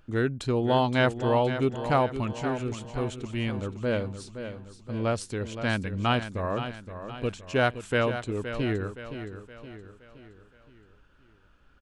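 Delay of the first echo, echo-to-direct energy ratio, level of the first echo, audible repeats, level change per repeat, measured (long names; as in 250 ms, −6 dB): 519 ms, −9.0 dB, −10.0 dB, 4, −6.5 dB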